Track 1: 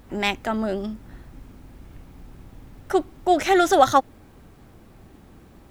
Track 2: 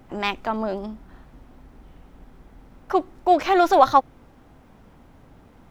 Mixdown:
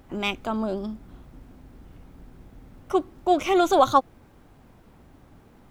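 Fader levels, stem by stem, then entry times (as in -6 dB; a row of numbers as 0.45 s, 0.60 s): -7.5 dB, -4.5 dB; 0.00 s, 0.00 s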